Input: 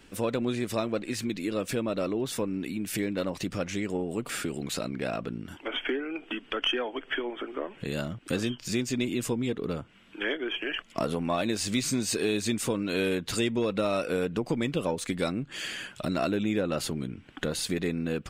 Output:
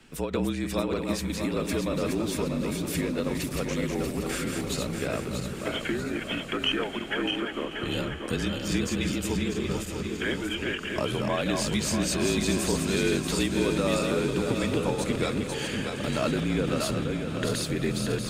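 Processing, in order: backward echo that repeats 318 ms, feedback 68%, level -4 dB; frequency shift -41 Hz; echo that smears into a reverb 1116 ms, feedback 50%, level -12 dB; endings held to a fixed fall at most 140 dB/s

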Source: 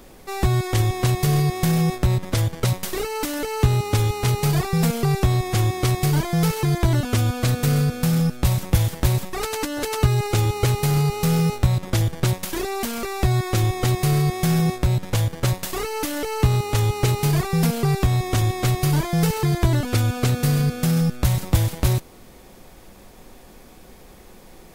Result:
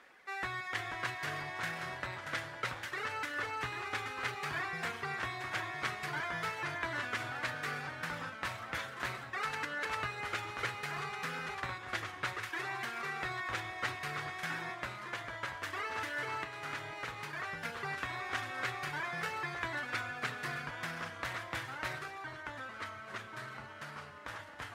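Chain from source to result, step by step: reverb removal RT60 0.82 s; 14.91–17.65 s: compression 4:1, threshold -22 dBFS, peak gain reduction 9.5 dB; band-pass filter 1.7 kHz, Q 2.4; reverberation, pre-delay 3 ms, DRR 10 dB; ever faster or slower copies 432 ms, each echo -2 st, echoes 3, each echo -6 dB

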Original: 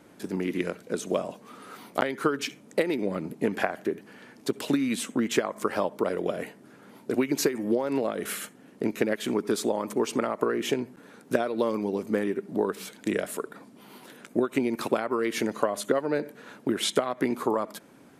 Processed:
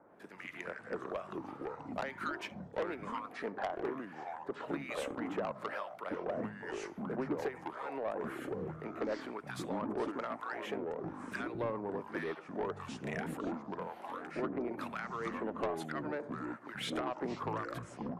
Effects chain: three-band isolator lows -15 dB, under 570 Hz, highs -19 dB, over 2.3 kHz; harmonic tremolo 1.1 Hz, depth 100%, crossover 1.3 kHz; saturation -31 dBFS, distortion -11 dB; ever faster or slower copies 122 ms, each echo -5 st, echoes 3; trim +1.5 dB

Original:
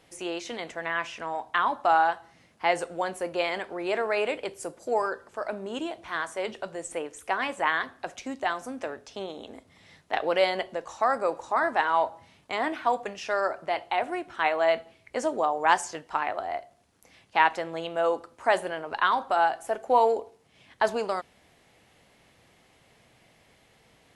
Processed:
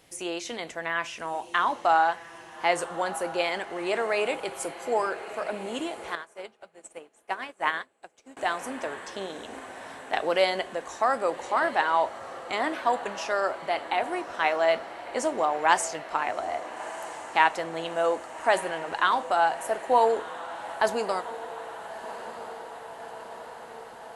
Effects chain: treble shelf 7 kHz +9.5 dB; echo that smears into a reverb 1274 ms, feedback 68%, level -14 dB; 6.15–8.37 s: upward expansion 2.5:1, over -41 dBFS

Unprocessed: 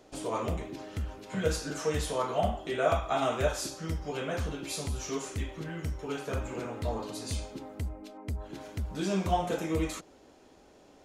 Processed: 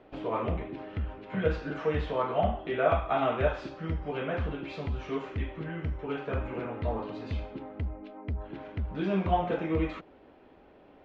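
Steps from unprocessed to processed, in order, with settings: low-pass 2.9 kHz 24 dB/octave; trim +1.5 dB

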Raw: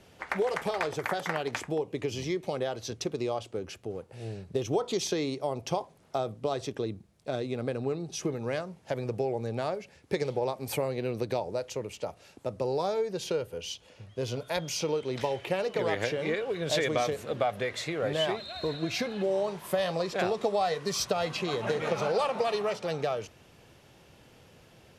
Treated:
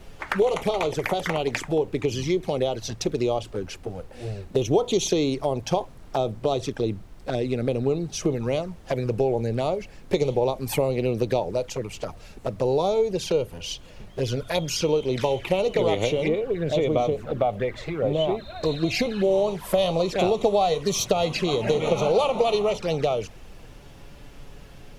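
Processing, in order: 16.28–18.63 s: low-pass 1.1 kHz 6 dB/octave; touch-sensitive flanger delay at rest 8.5 ms, full sweep at -27.5 dBFS; added noise brown -52 dBFS; trim +8.5 dB

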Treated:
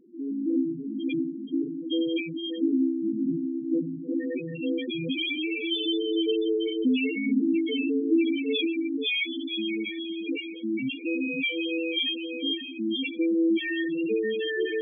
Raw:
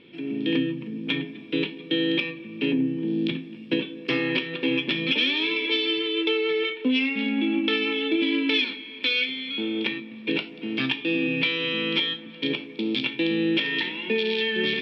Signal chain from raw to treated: echo that smears into a reverb 538 ms, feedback 53%, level -4 dB; loudest bins only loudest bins 4

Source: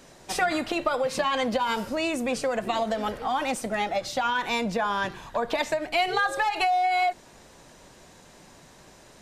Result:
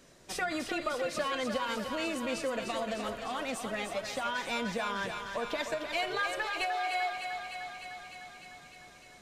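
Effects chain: peaking EQ 830 Hz -9 dB 0.32 oct; thinning echo 302 ms, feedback 74%, high-pass 410 Hz, level -6 dB; trim -7 dB

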